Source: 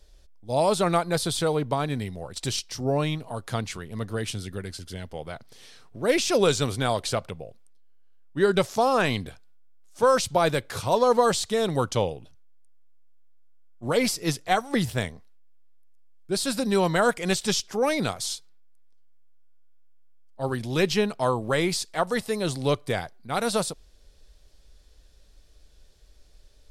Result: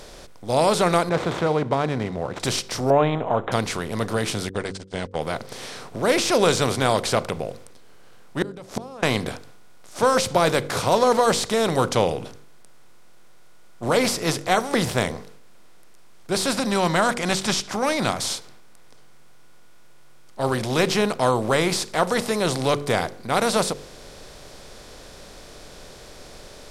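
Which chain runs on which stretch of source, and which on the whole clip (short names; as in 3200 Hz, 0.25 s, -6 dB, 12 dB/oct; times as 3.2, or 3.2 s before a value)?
1.09–2.4 median filter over 9 samples + HPF 45 Hz + tape spacing loss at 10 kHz 23 dB
2.9–3.52 LPF 1200 Hz 6 dB/oct + bell 740 Hz +11 dB 1.5 oct + careless resampling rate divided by 6×, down none, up filtered
4.49–5.21 gate -37 dBFS, range -54 dB + steep low-pass 9000 Hz 72 dB/oct
8.42–9.03 tilt shelf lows +6.5 dB, about 710 Hz + compressor 2:1, threshold -28 dBFS + flipped gate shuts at -21 dBFS, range -28 dB
16.53–18.2 Bessel low-pass 9300 Hz + bell 450 Hz -14.5 dB 0.39 oct
whole clip: per-bin compression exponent 0.6; de-hum 47.93 Hz, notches 11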